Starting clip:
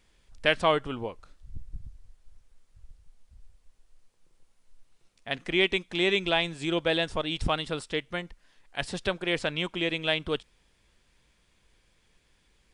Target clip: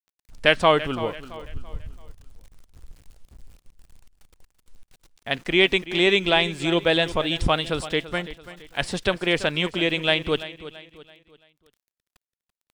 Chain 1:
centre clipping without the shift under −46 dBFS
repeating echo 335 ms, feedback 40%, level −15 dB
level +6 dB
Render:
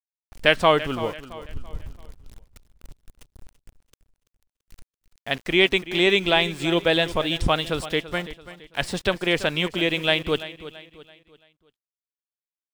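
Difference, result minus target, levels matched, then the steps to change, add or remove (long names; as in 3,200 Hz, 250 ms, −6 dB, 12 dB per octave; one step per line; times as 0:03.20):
centre clipping without the shift: distortion +8 dB
change: centre clipping without the shift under −54.5 dBFS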